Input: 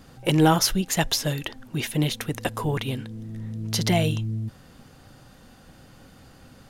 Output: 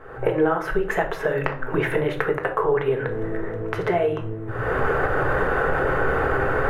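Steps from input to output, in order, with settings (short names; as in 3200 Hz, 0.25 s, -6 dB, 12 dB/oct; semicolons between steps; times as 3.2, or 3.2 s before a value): recorder AGC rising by 45 dB/s; EQ curve 120 Hz 0 dB, 220 Hz -16 dB, 400 Hz +15 dB, 650 Hz +7 dB, 1600 Hz +12 dB, 4700 Hz -24 dB, 11000 Hz -19 dB; compressor 4:1, threshold -21 dBFS, peak gain reduction 12.5 dB; shoebox room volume 500 m³, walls furnished, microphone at 1.5 m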